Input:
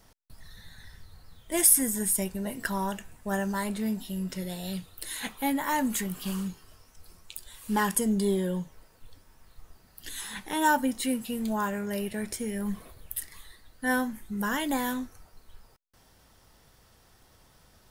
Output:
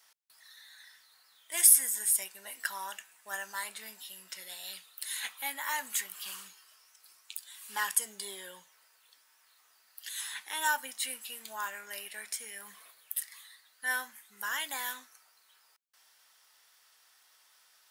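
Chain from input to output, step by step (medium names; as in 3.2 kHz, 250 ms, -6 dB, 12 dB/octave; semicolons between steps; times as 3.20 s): high-pass 1.4 kHz 12 dB/octave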